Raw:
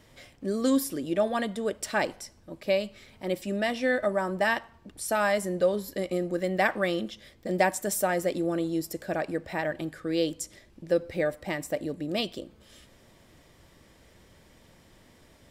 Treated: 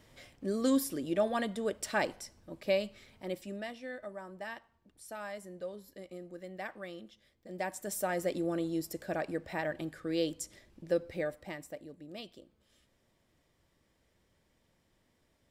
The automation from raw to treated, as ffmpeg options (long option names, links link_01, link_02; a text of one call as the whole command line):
ffmpeg -i in.wav -af "volume=8dB,afade=type=out:start_time=2.84:duration=0.97:silence=0.223872,afade=type=in:start_time=7.47:duration=0.82:silence=0.251189,afade=type=out:start_time=10.89:duration=0.95:silence=0.281838" out.wav